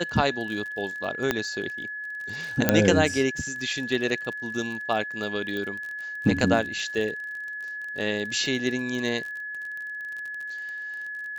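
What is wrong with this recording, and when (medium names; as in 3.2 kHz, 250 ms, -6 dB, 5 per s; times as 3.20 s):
crackle 36 per s -33 dBFS
whine 1.7 kHz -32 dBFS
1.31 s: pop -8 dBFS
2.69 s: pop -3 dBFS
5.57 s: pop -20 dBFS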